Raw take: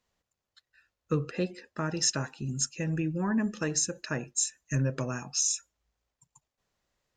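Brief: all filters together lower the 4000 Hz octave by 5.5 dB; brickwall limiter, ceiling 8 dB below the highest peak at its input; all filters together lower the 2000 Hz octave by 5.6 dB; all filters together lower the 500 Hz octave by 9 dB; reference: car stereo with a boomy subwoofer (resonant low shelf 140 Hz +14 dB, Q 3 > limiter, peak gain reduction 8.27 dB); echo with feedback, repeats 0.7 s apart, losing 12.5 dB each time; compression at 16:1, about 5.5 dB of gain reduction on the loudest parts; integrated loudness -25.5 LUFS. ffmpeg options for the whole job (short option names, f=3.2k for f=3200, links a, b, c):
-af "equalizer=f=500:t=o:g=-9,equalizer=f=2k:t=o:g=-5,equalizer=f=4k:t=o:g=-8,acompressor=threshold=-30dB:ratio=16,alimiter=level_in=4.5dB:limit=-24dB:level=0:latency=1,volume=-4.5dB,lowshelf=f=140:t=q:w=3:g=14,aecho=1:1:700|1400|2100:0.237|0.0569|0.0137,volume=13dB,alimiter=limit=-16dB:level=0:latency=1"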